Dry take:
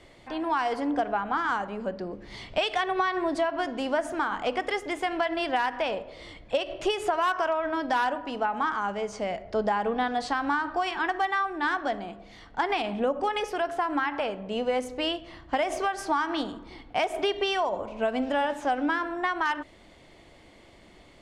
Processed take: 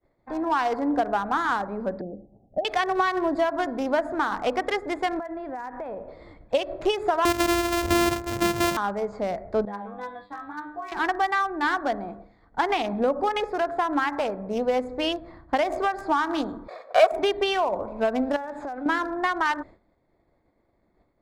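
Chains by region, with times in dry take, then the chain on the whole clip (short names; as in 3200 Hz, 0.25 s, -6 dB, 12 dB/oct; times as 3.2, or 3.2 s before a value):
2.01–2.65 rippled Chebyshev low-pass 810 Hz, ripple 6 dB + low shelf 110 Hz -3.5 dB
5.19–6.08 LPF 2500 Hz + bell 1300 Hz -3 dB 1.9 oct + compressor 3:1, threshold -35 dBFS
7.25–8.77 sample sorter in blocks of 128 samples + bell 71 Hz +10.5 dB 1.5 oct
9.65–10.92 resonant high shelf 4500 Hz -9.5 dB, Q 3 + resonator 100 Hz, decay 0.36 s, mix 100%
16.68–17.12 minimum comb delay 1.7 ms + resonant high-pass 560 Hz, resonance Q 3.9 + mismatched tape noise reduction encoder only
18.36–18.86 high shelf 2100 Hz +6 dB + compressor, threshold -33 dBFS
whole clip: Wiener smoothing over 15 samples; expander -43 dBFS; gain +3.5 dB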